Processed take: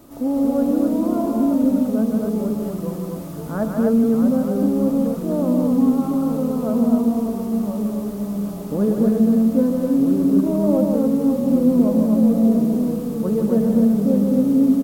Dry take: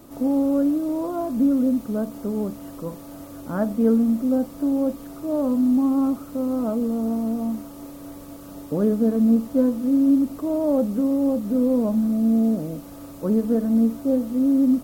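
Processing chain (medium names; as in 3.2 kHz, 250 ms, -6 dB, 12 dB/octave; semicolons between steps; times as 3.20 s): ever faster or slower copies 203 ms, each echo -2 st, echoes 3, each echo -6 dB; loudspeakers at several distances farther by 53 m -5 dB, 87 m -3 dB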